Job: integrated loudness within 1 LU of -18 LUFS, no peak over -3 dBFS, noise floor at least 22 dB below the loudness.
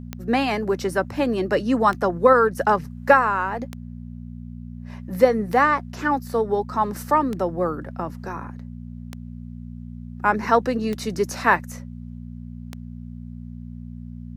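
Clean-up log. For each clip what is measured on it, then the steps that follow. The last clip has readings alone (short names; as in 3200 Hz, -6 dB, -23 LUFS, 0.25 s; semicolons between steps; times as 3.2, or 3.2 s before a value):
clicks 8; hum 60 Hz; harmonics up to 240 Hz; hum level -33 dBFS; loudness -21.5 LUFS; peak -3.5 dBFS; loudness target -18.0 LUFS
-> de-click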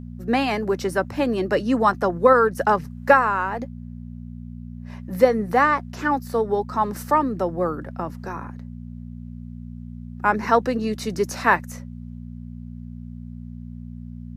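clicks 0; hum 60 Hz; harmonics up to 240 Hz; hum level -33 dBFS
-> de-hum 60 Hz, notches 4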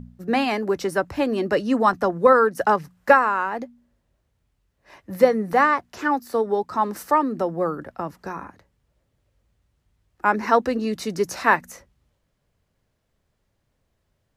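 hum none; loudness -21.5 LUFS; peak -4.0 dBFS; loudness target -18.0 LUFS
-> gain +3.5 dB; limiter -3 dBFS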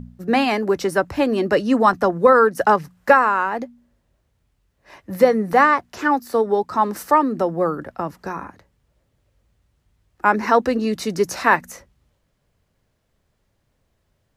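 loudness -18.5 LUFS; peak -3.0 dBFS; noise floor -69 dBFS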